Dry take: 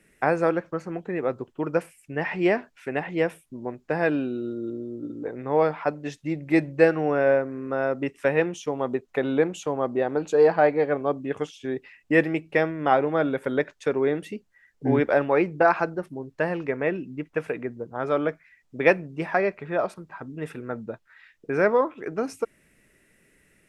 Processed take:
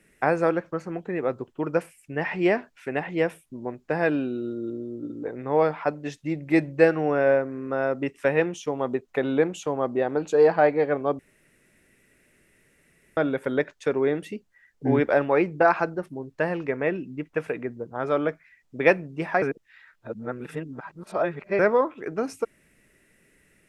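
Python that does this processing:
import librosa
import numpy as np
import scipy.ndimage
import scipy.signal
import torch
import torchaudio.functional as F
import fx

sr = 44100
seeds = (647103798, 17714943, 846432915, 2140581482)

y = fx.edit(x, sr, fx.room_tone_fill(start_s=11.19, length_s=1.98),
    fx.reverse_span(start_s=19.42, length_s=2.17), tone=tone)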